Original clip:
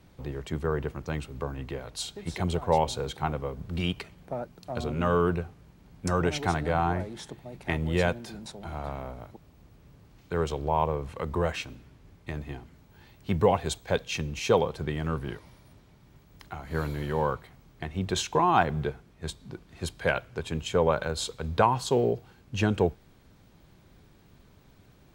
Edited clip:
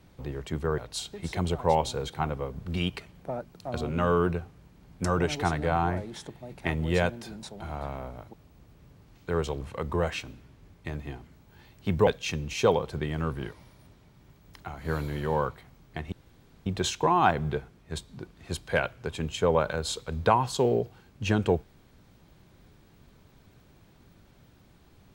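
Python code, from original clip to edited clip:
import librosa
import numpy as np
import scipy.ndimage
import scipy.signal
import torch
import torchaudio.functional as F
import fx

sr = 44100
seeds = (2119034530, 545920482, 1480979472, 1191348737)

y = fx.edit(x, sr, fx.cut(start_s=0.78, length_s=1.03),
    fx.cut(start_s=10.64, length_s=0.39),
    fx.cut(start_s=13.49, length_s=0.44),
    fx.insert_room_tone(at_s=17.98, length_s=0.54), tone=tone)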